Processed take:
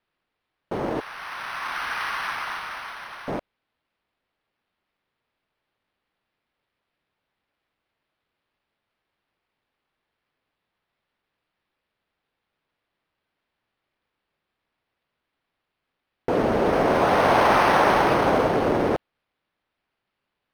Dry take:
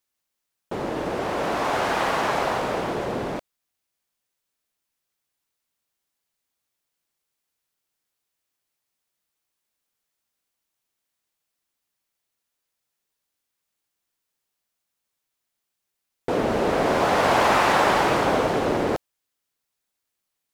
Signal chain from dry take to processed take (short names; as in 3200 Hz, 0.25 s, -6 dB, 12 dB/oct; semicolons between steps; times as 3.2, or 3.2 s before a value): 1–3.28 HPF 1200 Hz 24 dB/oct; decimation joined by straight lines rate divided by 6×; gain +1.5 dB